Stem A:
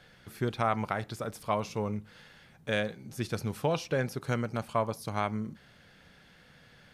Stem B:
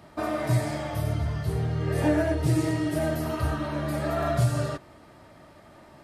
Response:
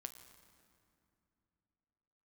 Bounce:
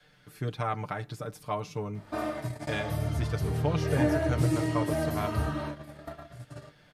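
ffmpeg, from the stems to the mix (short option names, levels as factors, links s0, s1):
-filter_complex "[0:a]adynamicequalizer=threshold=0.00562:dfrequency=140:dqfactor=0.83:tfrequency=140:tqfactor=0.83:attack=5:release=100:ratio=0.375:range=2.5:mode=boostabove:tftype=bell,aecho=1:1:6.7:0.69,volume=0.562,asplit=2[s0][s1];[1:a]adelay=1950,volume=0.708[s2];[s1]apad=whole_len=352156[s3];[s2][s3]sidechaingate=range=0.0224:threshold=0.00141:ratio=16:detection=peak[s4];[s0][s4]amix=inputs=2:normalize=0"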